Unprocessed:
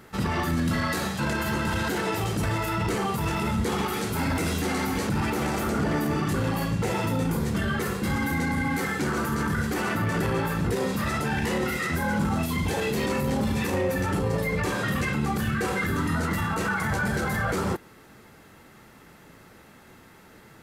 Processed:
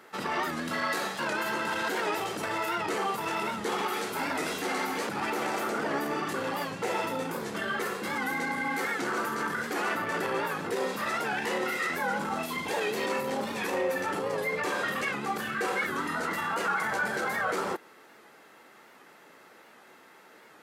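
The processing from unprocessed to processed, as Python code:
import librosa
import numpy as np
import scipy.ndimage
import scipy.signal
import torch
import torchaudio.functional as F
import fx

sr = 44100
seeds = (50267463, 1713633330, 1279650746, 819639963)

y = scipy.signal.sosfilt(scipy.signal.butter(2, 410.0, 'highpass', fs=sr, output='sos'), x)
y = fx.high_shelf(y, sr, hz=5000.0, db=-6.0)
y = fx.record_warp(y, sr, rpm=78.0, depth_cents=100.0)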